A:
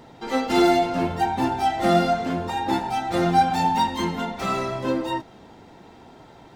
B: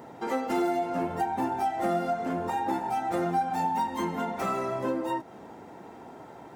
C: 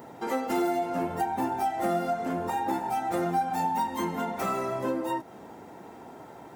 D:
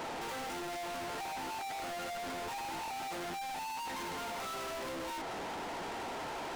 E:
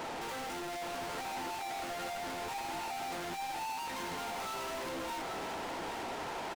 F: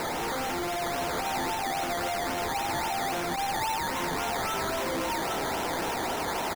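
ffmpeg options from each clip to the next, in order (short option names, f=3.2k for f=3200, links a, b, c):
-af "highpass=f=270:p=1,equalizer=f=3.9k:t=o:w=1.5:g=-13,acompressor=threshold=-32dB:ratio=3,volume=4dB"
-af "highshelf=f=9.9k:g=9.5"
-filter_complex "[0:a]asplit=2[a][b];[b]highpass=f=720:p=1,volume=36dB,asoftclip=type=tanh:threshold=-15.5dB[c];[a][c]amix=inputs=2:normalize=0,lowpass=f=5.6k:p=1,volume=-6dB,acrossover=split=9100[d][e];[e]acompressor=threshold=-58dB:ratio=4:attack=1:release=60[f];[d][f]amix=inputs=2:normalize=0,asoftclip=type=tanh:threshold=-33.5dB,volume=-6dB"
-af "aecho=1:1:817:0.447"
-af "acrusher=samples=13:mix=1:aa=0.000001:lfo=1:lforange=7.8:lforate=3.7,volume=9dB"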